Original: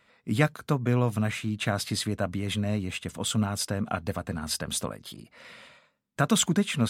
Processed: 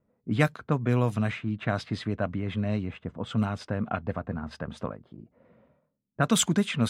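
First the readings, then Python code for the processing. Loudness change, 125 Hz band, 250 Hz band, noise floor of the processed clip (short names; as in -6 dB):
-1.0 dB, 0.0 dB, 0.0 dB, -76 dBFS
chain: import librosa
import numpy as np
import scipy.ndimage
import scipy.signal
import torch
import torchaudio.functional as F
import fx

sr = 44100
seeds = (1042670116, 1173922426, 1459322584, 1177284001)

y = fx.env_lowpass(x, sr, base_hz=390.0, full_db=-19.0)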